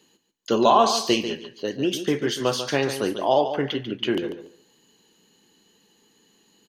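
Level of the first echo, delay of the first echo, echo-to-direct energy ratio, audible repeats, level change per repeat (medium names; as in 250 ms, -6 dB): -10.0 dB, 143 ms, -10.0 dB, 2, -15.0 dB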